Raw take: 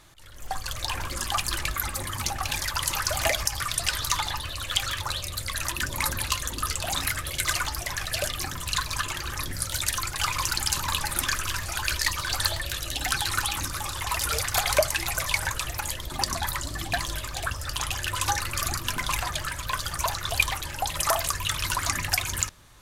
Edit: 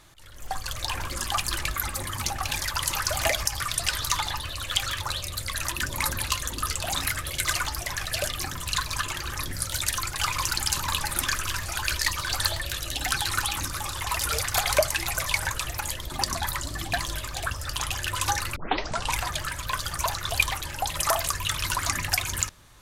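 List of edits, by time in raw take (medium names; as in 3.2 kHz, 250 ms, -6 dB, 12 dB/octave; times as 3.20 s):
18.56 s: tape start 0.61 s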